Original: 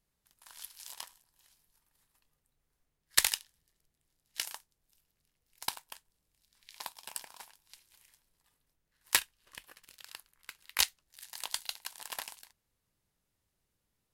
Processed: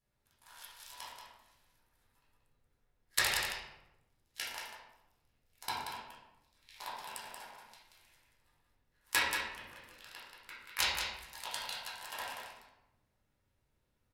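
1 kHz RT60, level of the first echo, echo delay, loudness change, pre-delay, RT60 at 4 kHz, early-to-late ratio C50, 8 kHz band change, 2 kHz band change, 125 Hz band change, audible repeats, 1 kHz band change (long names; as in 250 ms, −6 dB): 0.90 s, −4.5 dB, 182 ms, −3.0 dB, 10 ms, 0.65 s, −1.0 dB, −6.0 dB, +2.5 dB, +5.0 dB, 1, +4.5 dB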